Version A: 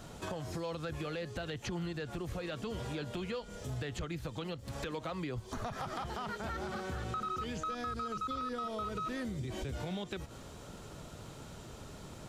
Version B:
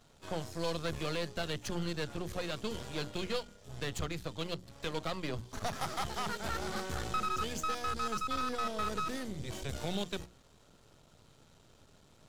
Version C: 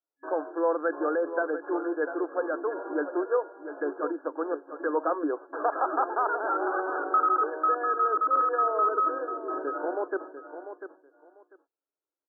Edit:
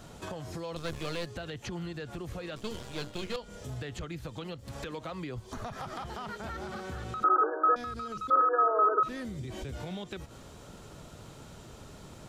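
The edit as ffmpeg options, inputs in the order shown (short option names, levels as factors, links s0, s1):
-filter_complex "[1:a]asplit=2[s0][s1];[2:a]asplit=2[s2][s3];[0:a]asplit=5[s4][s5][s6][s7][s8];[s4]atrim=end=0.762[s9];[s0]atrim=start=0.758:end=1.262[s10];[s5]atrim=start=1.258:end=2.562[s11];[s1]atrim=start=2.558:end=3.362[s12];[s6]atrim=start=3.358:end=7.242[s13];[s2]atrim=start=7.238:end=7.762[s14];[s7]atrim=start=7.758:end=8.302[s15];[s3]atrim=start=8.298:end=9.032[s16];[s8]atrim=start=9.028[s17];[s9][s10]acrossfade=d=0.004:c1=hsin:c2=hsin[s18];[s18][s11]acrossfade=d=0.004:c1=hsin:c2=hsin[s19];[s19][s12]acrossfade=d=0.004:c1=hsin:c2=hsin[s20];[s20][s13]acrossfade=d=0.004:c1=hsin:c2=hsin[s21];[s21][s14]acrossfade=d=0.004:c1=hsin:c2=hsin[s22];[s22][s15]acrossfade=d=0.004:c1=hsin:c2=hsin[s23];[s23][s16]acrossfade=d=0.004:c1=hsin:c2=hsin[s24];[s24][s17]acrossfade=d=0.004:c1=hsin:c2=hsin"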